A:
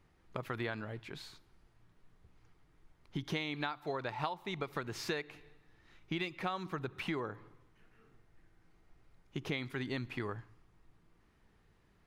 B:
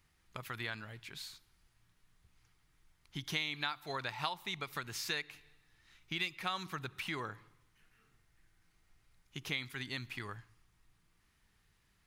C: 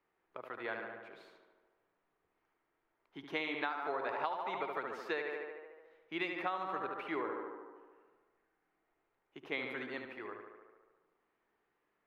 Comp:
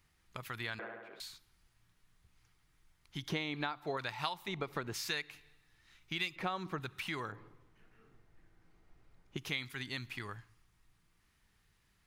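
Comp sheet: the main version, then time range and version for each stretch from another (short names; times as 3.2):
B
0.79–1.2 from C
3.29–3.97 from A
4.48–4.94 from A
6.36–6.8 from A
7.32–9.37 from A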